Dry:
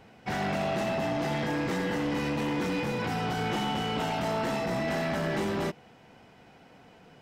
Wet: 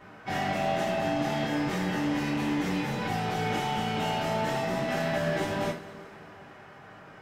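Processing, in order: band noise 100–1600 Hz -51 dBFS; two-slope reverb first 0.29 s, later 2.6 s, from -21 dB, DRR -5 dB; gain -5 dB

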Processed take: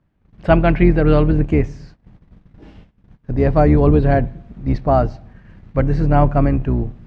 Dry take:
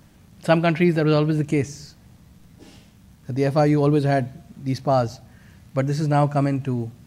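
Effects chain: octaver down 2 oct, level 0 dB; LPF 2200 Hz 12 dB/oct; gate -45 dBFS, range -19 dB; gain +4 dB

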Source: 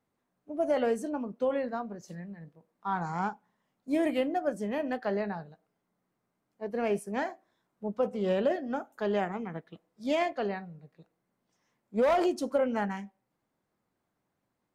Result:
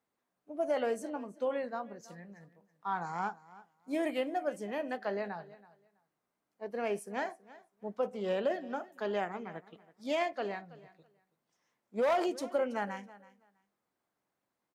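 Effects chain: low shelf 230 Hz -12 dB; feedback echo 0.327 s, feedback 18%, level -19.5 dB; gain -2 dB

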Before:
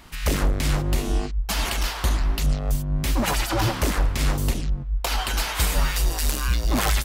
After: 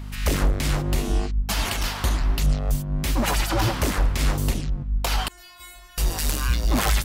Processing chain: hum 50 Hz, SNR 12 dB; 5.28–5.98 metallic resonator 350 Hz, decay 0.69 s, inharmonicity 0.002

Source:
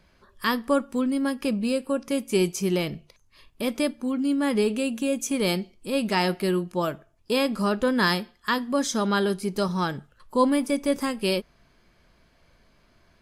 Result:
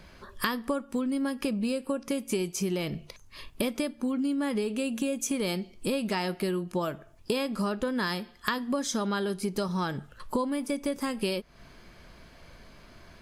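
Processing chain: compressor 16:1, threshold -35 dBFS, peak gain reduction 20.5 dB; gain +9 dB

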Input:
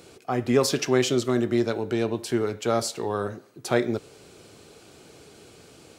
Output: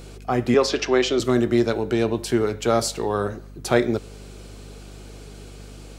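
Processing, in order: 0.54–1.2 three-band isolator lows -21 dB, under 250 Hz, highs -22 dB, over 6100 Hz; hum 50 Hz, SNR 18 dB; gain +4 dB

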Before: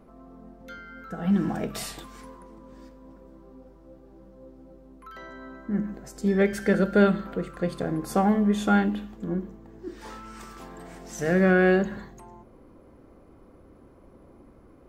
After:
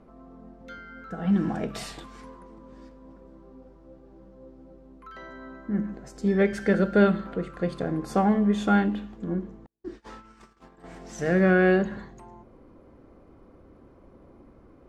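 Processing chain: 9.66–10.84 gate -40 dBFS, range -42 dB; air absorption 56 m

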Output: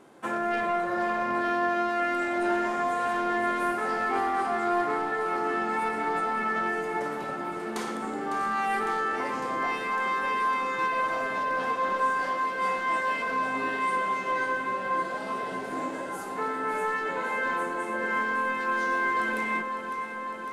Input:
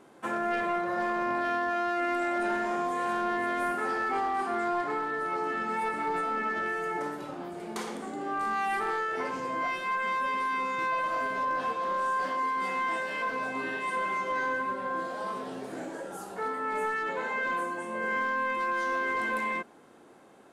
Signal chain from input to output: echo with dull and thin repeats by turns 0.277 s, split 870 Hz, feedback 88%, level -9 dB; gain +1.5 dB

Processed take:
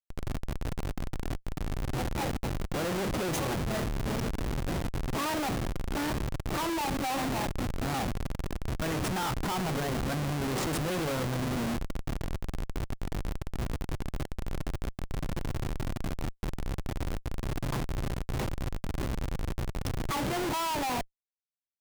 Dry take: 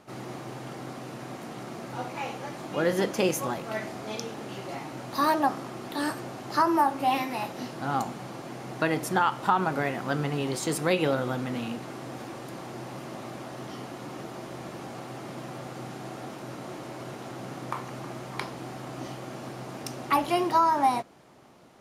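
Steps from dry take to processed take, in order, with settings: dynamic EQ 160 Hz, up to +4 dB, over -44 dBFS, Q 2.9; Schmitt trigger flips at -31.5 dBFS

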